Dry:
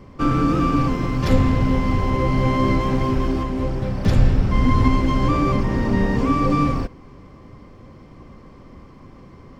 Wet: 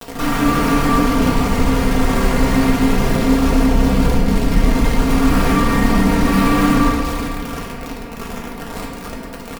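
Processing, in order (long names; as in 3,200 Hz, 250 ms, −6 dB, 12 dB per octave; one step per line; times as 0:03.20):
0:02.54–0:05.09: parametric band 950 Hz −6.5 dB 1 octave
brickwall limiter −15 dBFS, peak gain reduction 11 dB
high-shelf EQ 2,200 Hz −6 dB
delay with a high-pass on its return 262 ms, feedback 55%, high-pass 1,900 Hz, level −6 dB
bit reduction 6 bits
upward compression, threshold −27 dBFS
fuzz pedal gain 46 dB, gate −50 dBFS
comb filter 4.3 ms, depth 65%
convolution reverb RT60 2.2 s, pre-delay 7 ms, DRR −4.5 dB
level −8.5 dB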